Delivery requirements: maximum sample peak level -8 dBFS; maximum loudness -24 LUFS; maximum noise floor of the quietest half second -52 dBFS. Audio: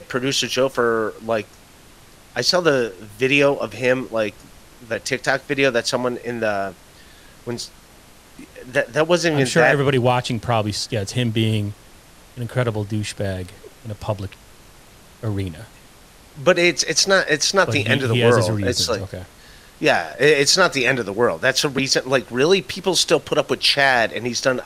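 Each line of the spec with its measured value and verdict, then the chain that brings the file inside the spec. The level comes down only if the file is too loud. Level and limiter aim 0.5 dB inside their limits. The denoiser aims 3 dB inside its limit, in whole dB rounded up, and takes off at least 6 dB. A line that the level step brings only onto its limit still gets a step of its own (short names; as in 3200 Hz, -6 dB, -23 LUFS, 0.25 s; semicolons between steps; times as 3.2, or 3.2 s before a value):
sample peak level -3.0 dBFS: fail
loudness -19.0 LUFS: fail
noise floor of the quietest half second -47 dBFS: fail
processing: gain -5.5 dB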